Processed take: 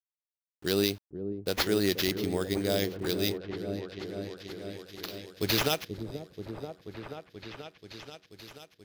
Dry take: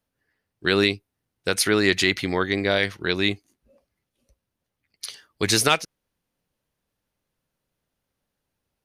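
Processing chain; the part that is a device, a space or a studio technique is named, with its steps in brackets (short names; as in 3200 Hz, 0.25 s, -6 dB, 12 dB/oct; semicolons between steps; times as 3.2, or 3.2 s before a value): band shelf 1500 Hz -9.5 dB; early 8-bit sampler (sample-rate reducer 8600 Hz, jitter 0%; bit-crush 8-bit); repeats that get brighter 0.483 s, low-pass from 400 Hz, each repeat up 1 oct, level -6 dB; gain -6 dB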